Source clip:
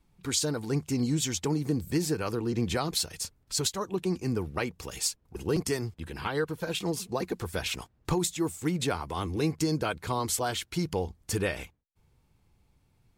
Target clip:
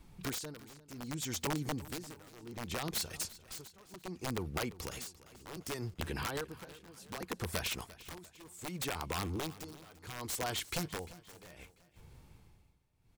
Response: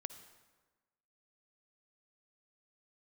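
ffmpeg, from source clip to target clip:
-filter_complex "[0:a]asettb=1/sr,asplit=3[link_01][link_02][link_03];[link_01]atrim=end=8.384[link_04];[link_02]atrim=start=8.38:end=8.91,asetpts=PTS-STARTPTS,afade=type=in:duration=0.004:curve=qsin,afade=type=out:start_time=0.526:duration=0.004:curve=qsin,tiltshelf=frequency=840:gain=-3.5[link_05];[link_03]atrim=start=8.906[link_06];[link_04][link_05]acrossfade=duration=0.004:curve1=hsin:curve2=qsin[link_07];[link_07][link_06]acrossfade=duration=0.004:curve1=qsin:curve2=hsin,acompressor=threshold=-45dB:ratio=4,aeval=exprs='(mod(66.8*val(0)+1,2)-1)/66.8':channel_layout=same,tremolo=f=0.66:d=0.93,aecho=1:1:346|692|1038|1384:0.126|0.0554|0.0244|0.0107,volume=9.5dB"

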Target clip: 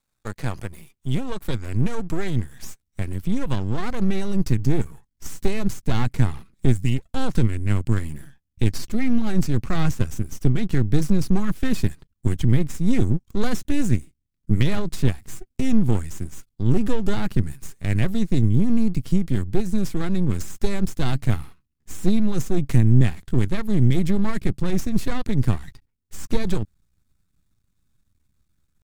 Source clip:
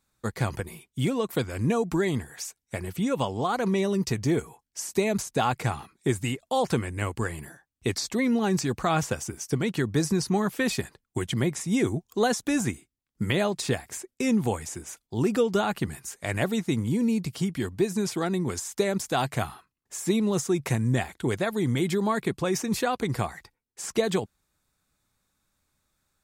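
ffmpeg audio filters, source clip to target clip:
ffmpeg -i in.wav -af "aeval=exprs='max(val(0),0)':channel_layout=same,atempo=0.91,asubboost=boost=6:cutoff=240" out.wav

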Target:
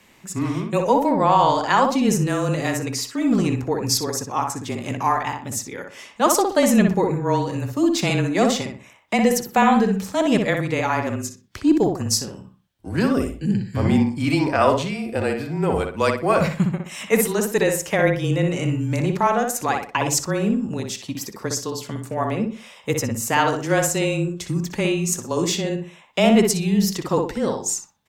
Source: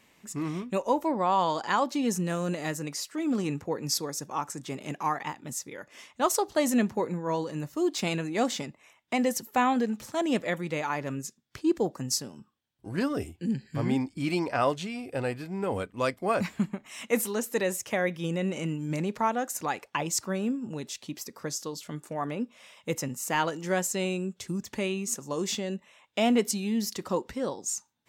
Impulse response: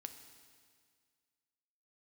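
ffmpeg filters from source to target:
-filter_complex "[0:a]asplit=2[link_01][link_02];[link_02]adelay=61,lowpass=frequency=2500:poles=1,volume=-4dB,asplit=2[link_03][link_04];[link_04]adelay=61,lowpass=frequency=2500:poles=1,volume=0.33,asplit=2[link_05][link_06];[link_06]adelay=61,lowpass=frequency=2500:poles=1,volume=0.33,asplit=2[link_07][link_08];[link_08]adelay=61,lowpass=frequency=2500:poles=1,volume=0.33[link_09];[link_01][link_03][link_05][link_07][link_09]amix=inputs=5:normalize=0,aeval=exprs='0.299*(cos(1*acos(clip(val(0)/0.299,-1,1)))-cos(1*PI/2))+0.00211*(cos(6*acos(clip(val(0)/0.299,-1,1)))-cos(6*PI/2))':channel_layout=same,afreqshift=-24,volume=7.5dB"

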